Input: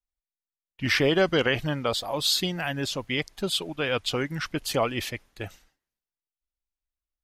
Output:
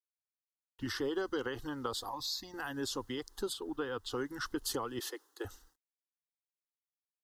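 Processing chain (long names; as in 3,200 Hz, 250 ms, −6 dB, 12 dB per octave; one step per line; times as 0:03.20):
downward compressor 5 to 1, threshold −30 dBFS, peak gain reduction 11.5 dB
0:02.09–0:02.54: phaser with its sweep stopped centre 2,100 Hz, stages 8
0:03.52–0:04.09: high-shelf EQ 3,100 Hz → 5,500 Hz −11.5 dB
0:04.99–0:05.45: Butterworth high-pass 290 Hz 72 dB per octave
bit-depth reduction 12 bits, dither none
phaser with its sweep stopped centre 630 Hz, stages 6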